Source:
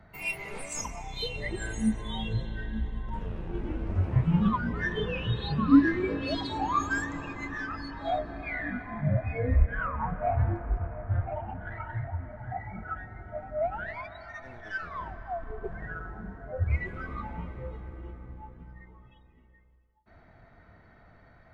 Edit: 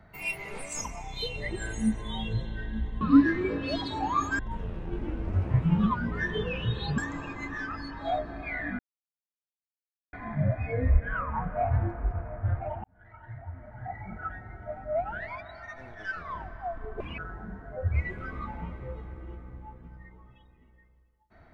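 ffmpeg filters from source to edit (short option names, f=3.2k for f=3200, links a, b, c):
-filter_complex "[0:a]asplit=8[a][b][c][d][e][f][g][h];[a]atrim=end=3.012[i];[b]atrim=start=5.598:end=6.982[j];[c]atrim=start=3.008:end=5.602[k];[d]atrim=start=6.978:end=8.79,asetpts=PTS-STARTPTS,afade=t=out:st=1.808:d=0.004:c=hsin,apad=pad_dur=1.34[l];[e]atrim=start=8.79:end=11.5,asetpts=PTS-STARTPTS,afade=t=in:d=0.004:c=hsin,afade=t=out:st=2.706:d=0.004:c=hsin[m];[f]atrim=start=11.5:end=15.664,asetpts=PTS-STARTPTS,afade=t=in:d=1.32[n];[g]atrim=start=15.66:end=15.94,asetpts=PTS-STARTPTS,asetrate=67914,aresample=44100,atrim=end_sample=8018,asetpts=PTS-STARTPTS[o];[h]atrim=start=15.936[p];[i][j]acrossfade=d=0.004:c1=hsin:c2=hsin[q];[q][k]acrossfade=d=0.004:c1=hsin:c2=hsin[r];[l][m][n]concat=n=3:v=0:a=1[s];[r][s]acrossfade=d=0.004:c1=hsin:c2=hsin[t];[t][o]acrossfade=d=0.004:c1=hsin:c2=hsin[u];[u][p]acrossfade=d=0.004:c1=hsin:c2=hsin"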